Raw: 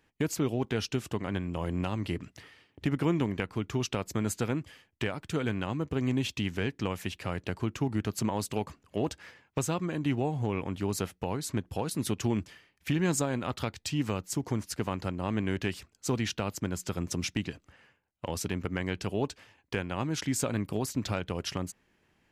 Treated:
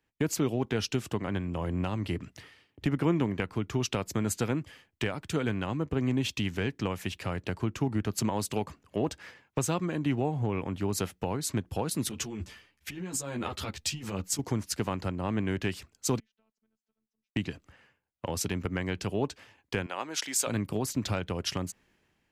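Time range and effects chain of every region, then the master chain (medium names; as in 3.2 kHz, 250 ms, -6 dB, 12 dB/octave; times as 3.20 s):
12.09–14.39 s: compressor with a negative ratio -34 dBFS + three-phase chorus
16.19–17.36 s: inverted gate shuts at -32 dBFS, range -40 dB + robot voice 220 Hz + distance through air 130 m
19.86–20.47 s: high-pass 530 Hz + short-mantissa float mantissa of 8-bit
whole clip: compression 1.5:1, threshold -39 dBFS; three bands expanded up and down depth 40%; trim +5.5 dB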